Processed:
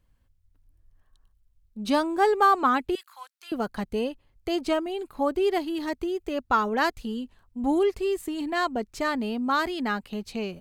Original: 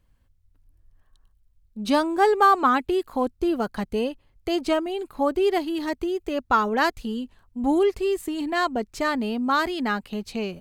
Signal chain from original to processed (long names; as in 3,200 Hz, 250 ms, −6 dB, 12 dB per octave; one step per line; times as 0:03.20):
0:02.95–0:03.52: high-pass filter 1,300 Hz 24 dB per octave
level −2.5 dB